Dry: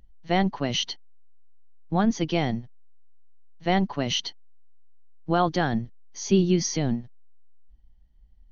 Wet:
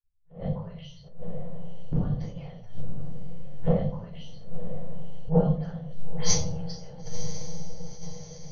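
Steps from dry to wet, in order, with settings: delay that grows with frequency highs late, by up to 129 ms; gate -46 dBFS, range -48 dB; harmonic-percussive split percussive +7 dB; elliptic band-stop 210–420 Hz, stop band 40 dB; inverted gate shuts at -19 dBFS, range -41 dB; peaking EQ 770 Hz +4 dB 2.6 oct; echo that smears into a reverb 990 ms, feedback 60%, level -12 dB; reverberation RT60 0.60 s, pre-delay 3 ms, DRR -8.5 dB; attacks held to a fixed rise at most 150 dB/s

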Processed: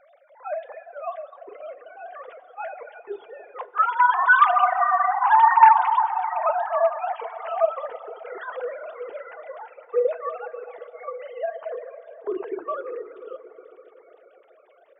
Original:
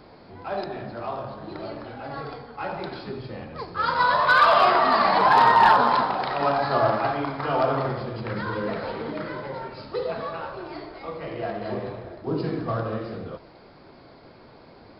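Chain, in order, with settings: formants replaced by sine waves; FDN reverb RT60 3.9 s, high-frequency decay 0.45×, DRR 5.5 dB; reverb removal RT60 0.88 s

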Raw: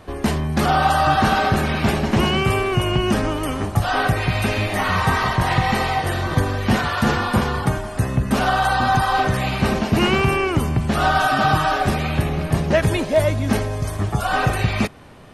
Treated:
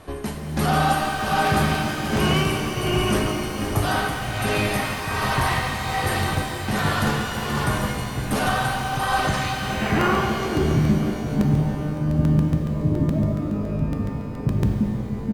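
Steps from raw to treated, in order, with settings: on a send: delay 479 ms -7 dB; on the sum: tremolo 1.3 Hz, depth 81%; low-pass sweep 11 kHz -> 220 Hz, 9.16–10.87 s; in parallel at -0.5 dB: peak limiter -14.5 dBFS, peak gain reduction 10 dB; on the sum: doubling 14 ms -11.5 dB; crackling interface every 0.14 s, samples 64, repeat, from 0.91 s; pitch-shifted reverb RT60 3 s, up +12 st, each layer -8 dB, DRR 2.5 dB; trim -7.5 dB

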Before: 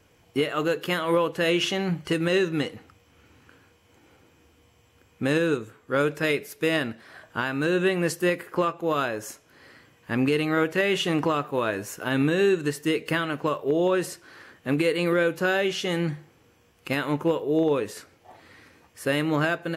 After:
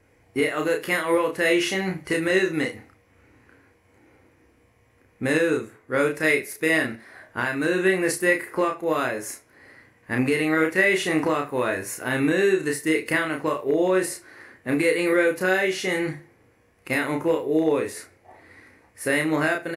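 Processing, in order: graphic EQ with 31 bands 160 Hz -7 dB, 1.25 kHz -3 dB, 2 kHz +9 dB, 3.15 kHz -8 dB, 10 kHz +10 dB; early reflections 32 ms -3.5 dB, 75 ms -17 dB; tape noise reduction on one side only decoder only

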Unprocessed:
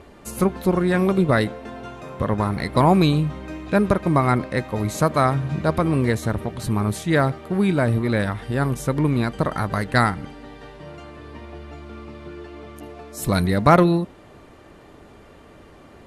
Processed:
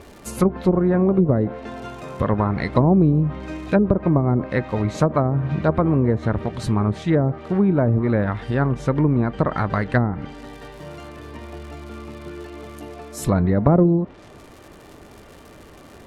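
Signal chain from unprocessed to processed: crackle 240 per s -38 dBFS; low-pass that closes with the level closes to 470 Hz, closed at -13 dBFS; trim +2 dB

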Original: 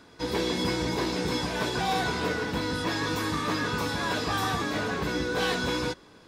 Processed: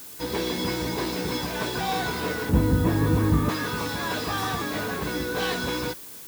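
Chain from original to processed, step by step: 2.49–3.49 s: tilt EQ -4.5 dB/octave; added noise blue -42 dBFS

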